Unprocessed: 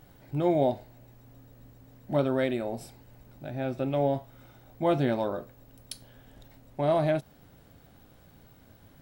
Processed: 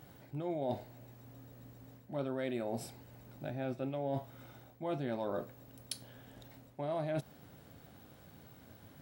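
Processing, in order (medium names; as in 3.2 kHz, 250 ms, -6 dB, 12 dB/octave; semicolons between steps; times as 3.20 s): high-pass 81 Hz; reverse; compression 12:1, threshold -33 dBFS, peak gain reduction 14 dB; reverse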